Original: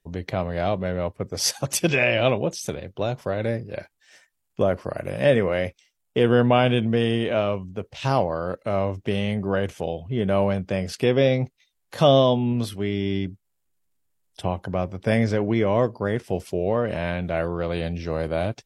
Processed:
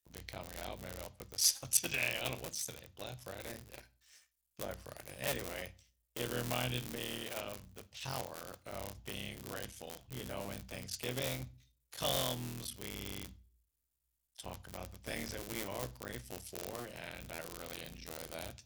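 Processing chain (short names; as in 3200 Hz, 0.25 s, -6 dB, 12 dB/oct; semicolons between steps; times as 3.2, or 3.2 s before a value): cycle switcher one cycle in 3, muted; pre-emphasis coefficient 0.9; on a send: reverb RT60 0.40 s, pre-delay 3 ms, DRR 13 dB; on the sum: gain -2.5 dB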